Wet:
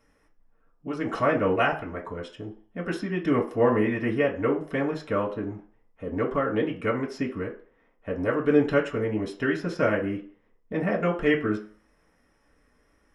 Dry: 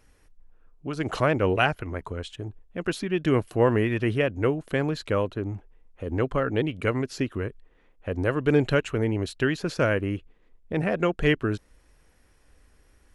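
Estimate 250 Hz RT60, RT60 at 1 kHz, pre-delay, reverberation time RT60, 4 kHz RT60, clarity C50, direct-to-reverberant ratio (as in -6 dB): 0.35 s, 0.50 s, 3 ms, 0.45 s, 0.45 s, 10.5 dB, -4.0 dB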